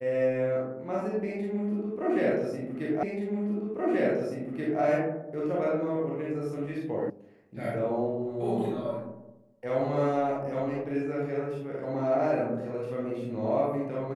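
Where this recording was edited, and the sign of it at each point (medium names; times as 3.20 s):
3.03 s: repeat of the last 1.78 s
7.10 s: sound stops dead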